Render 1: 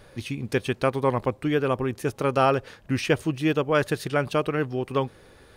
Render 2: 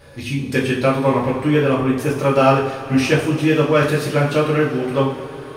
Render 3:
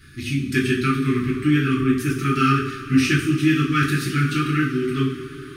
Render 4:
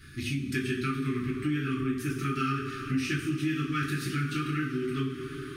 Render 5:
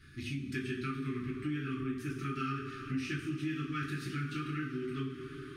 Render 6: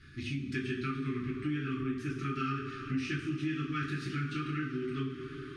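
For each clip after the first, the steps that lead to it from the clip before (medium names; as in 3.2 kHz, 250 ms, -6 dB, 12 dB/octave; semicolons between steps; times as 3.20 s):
in parallel at -5 dB: hard clipper -17 dBFS, distortion -14 dB; on the sum: two-slope reverb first 0.46 s, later 4.7 s, from -19 dB, DRR -6.5 dB; trim -3.5 dB
Chebyshev band-stop 390–1200 Hz, order 5
compression 2.5:1, threshold -28 dBFS, peak gain reduction 11 dB; trim -2.5 dB
treble shelf 8.6 kHz -10 dB; trim -6.5 dB
low-pass 6.9 kHz 12 dB/octave; trim +2 dB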